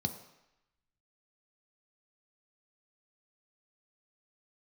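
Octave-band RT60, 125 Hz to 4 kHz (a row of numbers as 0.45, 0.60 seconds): 0.70, 0.75, 0.80, 0.95, 1.0, 0.90 seconds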